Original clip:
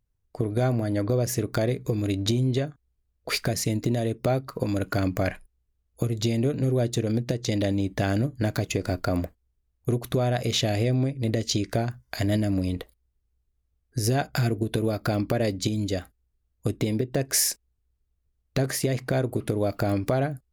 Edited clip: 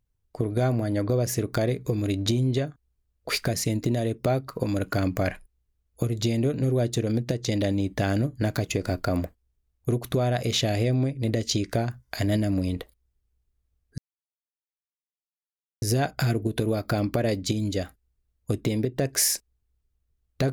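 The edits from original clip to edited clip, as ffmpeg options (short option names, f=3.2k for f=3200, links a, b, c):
-filter_complex "[0:a]asplit=2[a][b];[a]atrim=end=13.98,asetpts=PTS-STARTPTS,afade=t=out:st=13.976:d=0.004:c=hsin,apad=pad_dur=1.84[c];[b]atrim=start=13.98,asetpts=PTS-STARTPTS,afade=t=in:d=0.004:c=hsin[d];[c][d]concat=n=2:v=0:a=1"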